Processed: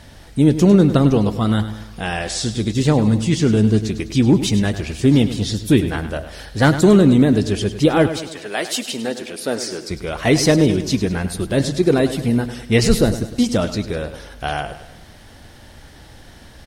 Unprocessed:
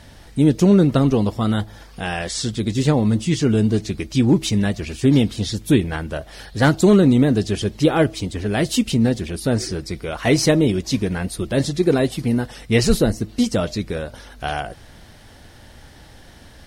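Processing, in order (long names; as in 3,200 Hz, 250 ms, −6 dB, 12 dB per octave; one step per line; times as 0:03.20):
0:08.08–0:09.89: high-pass filter 680 Hz → 310 Hz 12 dB per octave
repeating echo 102 ms, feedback 49%, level −12 dB
level +1.5 dB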